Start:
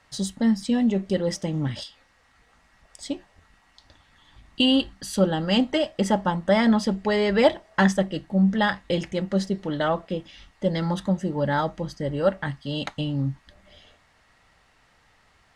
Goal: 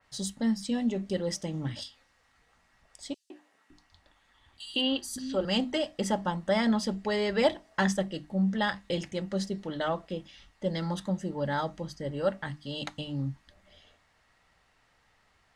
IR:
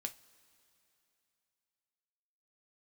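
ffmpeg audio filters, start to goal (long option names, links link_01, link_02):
-filter_complex "[0:a]bandreject=frequency=50:width_type=h:width=6,bandreject=frequency=100:width_type=h:width=6,bandreject=frequency=150:width_type=h:width=6,bandreject=frequency=200:width_type=h:width=6,bandreject=frequency=250:width_type=h:width=6,bandreject=frequency=300:width_type=h:width=6,asettb=1/sr,asplit=3[link_01][link_02][link_03];[link_01]atrim=end=3.144[link_04];[link_02]atrim=start=3.14:end=5.45,asetpts=PTS-STARTPTS,afade=type=in:duration=0.004:curve=qsin,afade=type=out:start_time=2.306:duration=0.004:curve=qsin,acrossover=split=220|4500[link_05][link_06][link_07];[link_06]adelay=160[link_08];[link_05]adelay=560[link_09];[link_09][link_08][link_07]amix=inputs=3:normalize=0,atrim=end_sample=101871[link_10];[link_03]atrim=start=5.446[link_11];[link_04][link_10]acrossfade=duration=0.004:curve1=hsin:curve2=qsin[link_12];[link_12][link_11]acrossfade=duration=0.004:curve1=qsin:curve2=hsin,adynamicequalizer=threshold=0.00891:dfrequency=3500:dqfactor=0.7:tfrequency=3500:tqfactor=0.7:attack=5:release=100:ratio=0.375:range=2.5:mode=boostabove:tftype=highshelf,volume=-6.5dB"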